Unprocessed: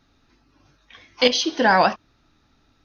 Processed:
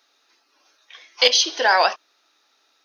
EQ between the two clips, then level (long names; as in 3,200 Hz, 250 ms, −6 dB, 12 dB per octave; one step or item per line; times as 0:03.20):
high-pass filter 420 Hz 24 dB per octave
high-shelf EQ 2,900 Hz +10.5 dB
−1.5 dB